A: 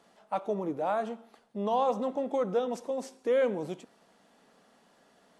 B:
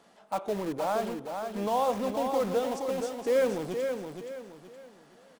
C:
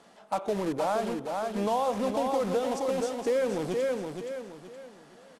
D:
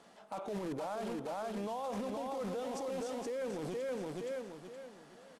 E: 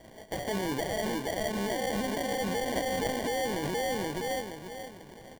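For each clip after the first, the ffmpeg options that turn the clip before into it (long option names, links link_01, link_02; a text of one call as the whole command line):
ffmpeg -i in.wav -filter_complex "[0:a]asplit=2[link_01][link_02];[link_02]aeval=exprs='(mod(42.2*val(0)+1,2)-1)/42.2':channel_layout=same,volume=-9dB[link_03];[link_01][link_03]amix=inputs=2:normalize=0,aecho=1:1:471|942|1413|1884:0.501|0.17|0.0579|0.0197" out.wav
ffmpeg -i in.wav -af "lowpass=frequency=12000:width=0.5412,lowpass=frequency=12000:width=1.3066,acompressor=threshold=-27dB:ratio=6,volume=3.5dB" out.wav
ffmpeg -i in.wav -af "alimiter=level_in=4.5dB:limit=-24dB:level=0:latency=1:release=19,volume=-4.5dB,volume=-3.5dB" out.wav
ffmpeg -i in.wav -af "lowpass=frequency=6100:width_type=q:width=5.7,acrusher=samples=34:mix=1:aa=0.000001,volume=7dB" out.wav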